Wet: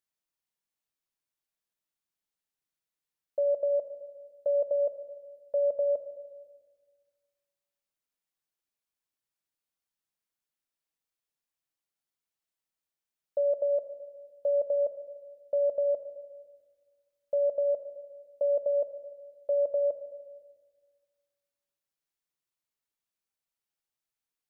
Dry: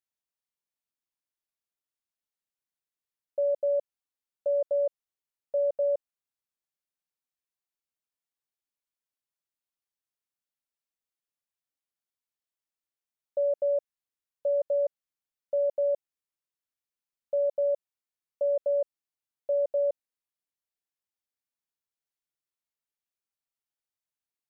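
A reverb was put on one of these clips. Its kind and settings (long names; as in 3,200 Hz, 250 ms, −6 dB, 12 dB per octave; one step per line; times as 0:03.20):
rectangular room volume 1,200 cubic metres, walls mixed, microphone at 0.61 metres
level +1 dB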